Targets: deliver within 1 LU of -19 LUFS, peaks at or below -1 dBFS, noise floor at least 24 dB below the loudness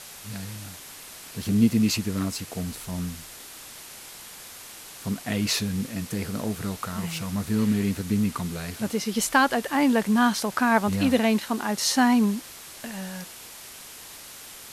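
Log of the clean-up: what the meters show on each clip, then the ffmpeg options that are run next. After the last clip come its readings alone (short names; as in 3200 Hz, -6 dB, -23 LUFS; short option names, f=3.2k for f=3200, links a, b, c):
noise floor -43 dBFS; noise floor target -49 dBFS; loudness -25.0 LUFS; peak -6.0 dBFS; loudness target -19.0 LUFS
-> -af "afftdn=nr=6:nf=-43"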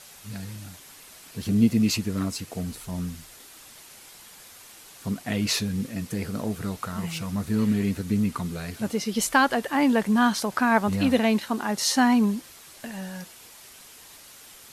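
noise floor -48 dBFS; noise floor target -49 dBFS
-> -af "afftdn=nr=6:nf=-48"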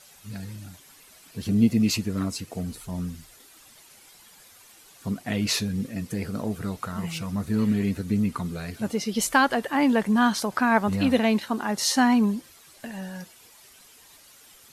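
noise floor -53 dBFS; loudness -25.0 LUFS; peak -6.0 dBFS; loudness target -19.0 LUFS
-> -af "volume=6dB,alimiter=limit=-1dB:level=0:latency=1"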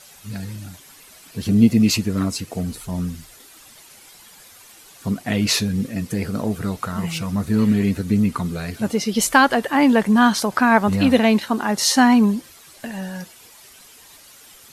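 loudness -19.0 LUFS; peak -1.0 dBFS; noise floor -47 dBFS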